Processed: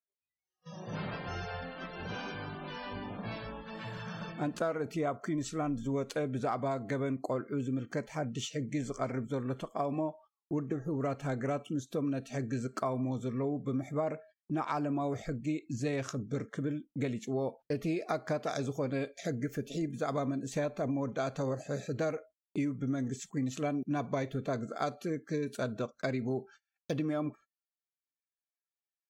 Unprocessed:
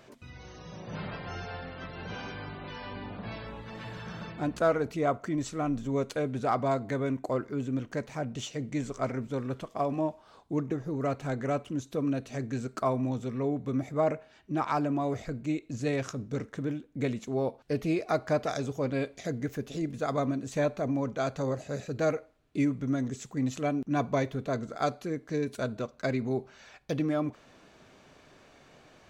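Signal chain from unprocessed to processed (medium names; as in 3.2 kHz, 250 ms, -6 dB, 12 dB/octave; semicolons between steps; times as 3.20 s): spectral noise reduction 25 dB; gate -49 dBFS, range -38 dB; compression 6:1, threshold -29 dBFS, peak gain reduction 9 dB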